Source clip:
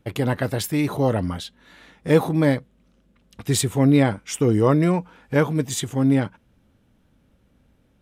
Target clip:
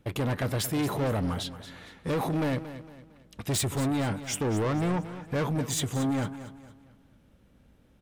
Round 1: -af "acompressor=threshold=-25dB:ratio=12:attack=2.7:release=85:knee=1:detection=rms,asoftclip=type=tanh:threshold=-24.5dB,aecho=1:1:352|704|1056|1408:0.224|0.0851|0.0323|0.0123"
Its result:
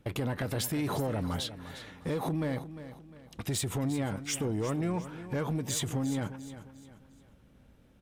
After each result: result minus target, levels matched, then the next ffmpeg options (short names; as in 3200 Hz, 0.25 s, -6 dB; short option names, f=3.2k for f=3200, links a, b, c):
echo 0.124 s late; compressor: peak gain reduction +10 dB
-af "acompressor=threshold=-25dB:ratio=12:attack=2.7:release=85:knee=1:detection=rms,asoftclip=type=tanh:threshold=-24.5dB,aecho=1:1:228|456|684|912:0.224|0.0851|0.0323|0.0123"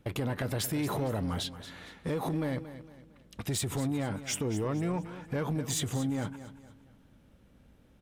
compressor: peak gain reduction +10 dB
-af "acompressor=threshold=-14dB:ratio=12:attack=2.7:release=85:knee=1:detection=rms,asoftclip=type=tanh:threshold=-24.5dB,aecho=1:1:228|456|684|912:0.224|0.0851|0.0323|0.0123"